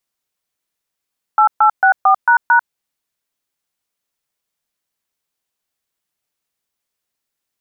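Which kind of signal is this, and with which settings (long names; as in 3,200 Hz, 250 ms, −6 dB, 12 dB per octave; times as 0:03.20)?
touch tones "8864##", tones 94 ms, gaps 130 ms, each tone −10 dBFS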